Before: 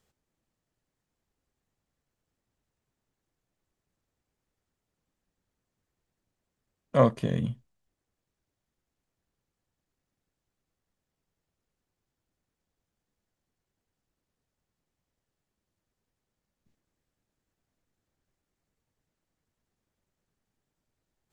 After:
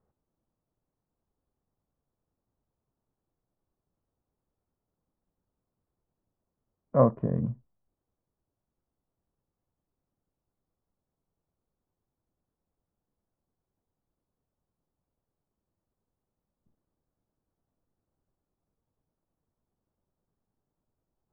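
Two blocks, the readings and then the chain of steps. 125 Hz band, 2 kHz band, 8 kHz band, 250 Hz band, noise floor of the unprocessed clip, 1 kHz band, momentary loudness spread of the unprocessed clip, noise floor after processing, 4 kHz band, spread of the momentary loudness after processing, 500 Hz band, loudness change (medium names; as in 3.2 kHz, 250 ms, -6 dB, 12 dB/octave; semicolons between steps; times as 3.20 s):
0.0 dB, under -10 dB, no reading, 0.0 dB, under -85 dBFS, -1.0 dB, 13 LU, under -85 dBFS, under -25 dB, 12 LU, 0.0 dB, 0.0 dB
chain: low-pass 1.2 kHz 24 dB/octave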